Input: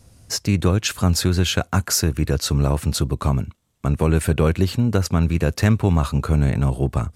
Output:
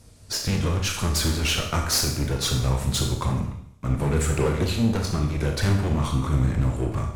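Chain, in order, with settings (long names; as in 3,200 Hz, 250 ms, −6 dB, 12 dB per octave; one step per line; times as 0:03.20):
pitch shifter swept by a sawtooth −3 semitones, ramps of 165 ms
asymmetric clip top −26 dBFS
four-comb reverb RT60 0.7 s, combs from 27 ms, DRR 2.5 dB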